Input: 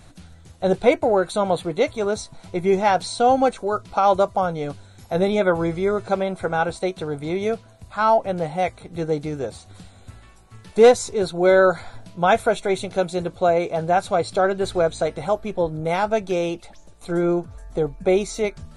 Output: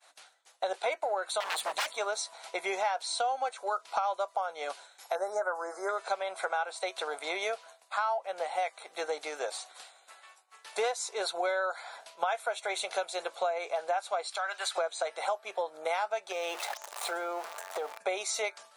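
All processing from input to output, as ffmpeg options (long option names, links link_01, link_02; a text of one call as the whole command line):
ffmpeg -i in.wav -filter_complex "[0:a]asettb=1/sr,asplit=3[link_01][link_02][link_03];[link_01]atrim=end=1.404[link_04];[link_02]atrim=start=1.4:end=1.92,asetpts=PTS-STARTPTS,afade=type=in:duration=0.004:curve=qsin,afade=type=out:start_time=0.516:duration=0.004:curve=qsin,bass=frequency=250:gain=10,treble=frequency=4000:gain=8,aeval=exprs='val(0)+0.0355*(sin(2*PI*50*n/s)+sin(2*PI*2*50*n/s)/2+sin(2*PI*3*50*n/s)/3+sin(2*PI*4*50*n/s)/4+sin(2*PI*5*50*n/s)/5)':channel_layout=same,aeval=exprs='0.0841*(abs(mod(val(0)/0.0841+3,4)-2)-1)':channel_layout=same[link_05];[link_03]atrim=start=1.916[link_06];[link_04][link_05]acrossfade=duration=0.004:curve1=hsin:curve2=qsin[link_07];[link_07][link_06]acrossfade=duration=0.004:curve1=qsin:curve2=hsin,asettb=1/sr,asplit=3[link_08][link_09][link_10];[link_08]atrim=end=5.154[link_11];[link_09]atrim=start=5.15:end=5.89,asetpts=PTS-STARTPTS,afade=type=in:duration=0.004:curve=qsin,afade=type=out:start_time=0.736:duration=0.004:curve=qsin,asuperstop=centerf=2900:order=8:qfactor=0.91,equalizer=frequency=130:width_type=o:width=0.98:gain=-14[link_12];[link_10]atrim=start=5.886[link_13];[link_11][link_12]acrossfade=duration=0.004:curve1=hsin:curve2=qsin[link_14];[link_14][link_13]acrossfade=duration=0.004:curve1=qsin:curve2=hsin,asettb=1/sr,asplit=3[link_15][link_16][link_17];[link_15]atrim=end=14.274[link_18];[link_16]atrim=start=14.27:end=14.78,asetpts=PTS-STARTPTS,afade=type=in:duration=0.004:curve=qsin,afade=type=out:start_time=0.506:duration=0.004:curve=qsin,highpass=1100,acompressor=threshold=-29dB:ratio=3:attack=3.2:release=140:knee=1:detection=peak[link_19];[link_17]atrim=start=14.776[link_20];[link_18][link_19]acrossfade=duration=0.004:curve1=hsin:curve2=qsin[link_21];[link_21][link_20]acrossfade=duration=0.004:curve1=qsin:curve2=hsin,asettb=1/sr,asplit=3[link_22][link_23][link_24];[link_22]atrim=end=16.324[link_25];[link_23]atrim=start=16.32:end=17.98,asetpts=PTS-STARTPTS,afade=type=in:duration=0.004:curve=qsin,afade=type=out:start_time=1.656:duration=0.004:curve=qsin,aeval=exprs='val(0)+0.5*0.015*sgn(val(0))':channel_layout=same,equalizer=frequency=880:width_type=o:width=2.5:gain=5,acompressor=threshold=-25dB:ratio=5:attack=3.2:release=140:knee=1:detection=peak[link_26];[link_24]atrim=start=17.976[link_27];[link_25][link_26]acrossfade=duration=0.004:curve1=hsin:curve2=qsin[link_28];[link_28][link_27]acrossfade=duration=0.004:curve1=qsin:curve2=hsin,highpass=frequency=650:width=0.5412,highpass=frequency=650:width=1.3066,agate=range=-33dB:threshold=-48dB:ratio=3:detection=peak,acompressor=threshold=-33dB:ratio=6,volume=4dB" out.wav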